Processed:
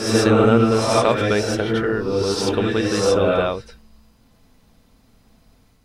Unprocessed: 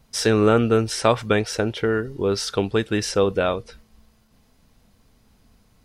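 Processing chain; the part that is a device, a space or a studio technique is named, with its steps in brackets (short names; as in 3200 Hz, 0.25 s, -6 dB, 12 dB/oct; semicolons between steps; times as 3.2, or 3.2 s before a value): reverse reverb (reverse; reverb RT60 1.1 s, pre-delay 72 ms, DRR -2 dB; reverse); gain -1 dB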